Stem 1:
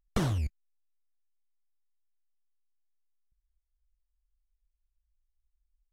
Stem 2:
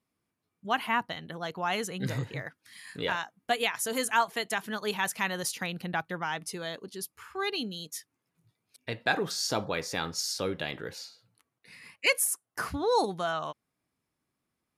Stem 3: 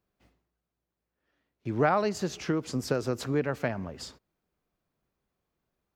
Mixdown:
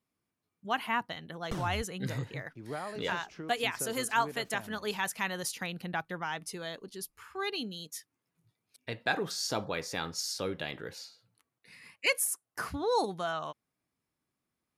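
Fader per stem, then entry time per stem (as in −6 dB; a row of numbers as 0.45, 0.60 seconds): −8.0, −3.0, −14.5 decibels; 1.35, 0.00, 0.90 seconds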